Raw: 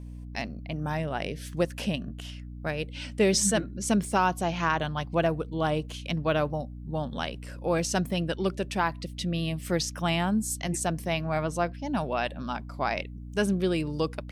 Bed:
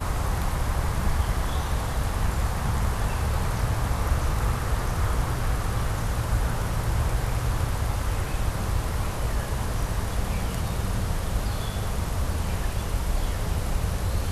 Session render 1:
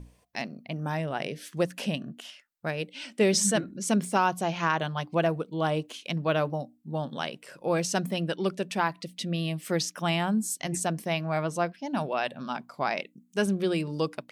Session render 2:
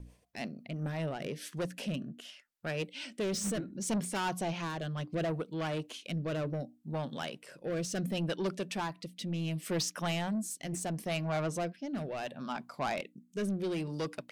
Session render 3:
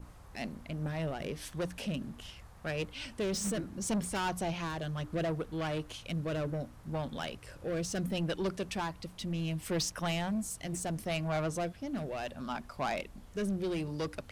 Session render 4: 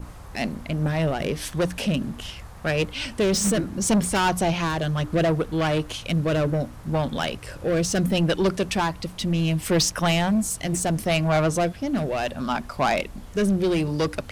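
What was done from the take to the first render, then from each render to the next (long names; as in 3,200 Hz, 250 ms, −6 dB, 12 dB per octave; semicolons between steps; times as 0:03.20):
mains-hum notches 60/120/180/240/300 Hz
soft clipping −27 dBFS, distortion −9 dB; rotating-speaker cabinet horn 6 Hz, later 0.7 Hz, at 0:00.60
mix in bed −27.5 dB
level +12 dB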